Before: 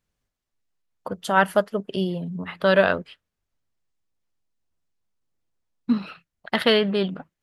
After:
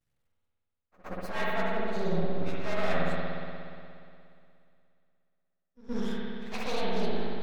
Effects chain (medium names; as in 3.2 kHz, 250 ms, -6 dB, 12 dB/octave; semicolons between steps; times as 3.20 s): frequency axis rescaled in octaves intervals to 111%; reverse; compression 6:1, threshold -31 dBFS, peak gain reduction 16.5 dB; reverse; half-wave rectifier; pre-echo 120 ms -21 dB; spring tank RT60 2.5 s, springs 59 ms, chirp 35 ms, DRR -5 dB; trim +2 dB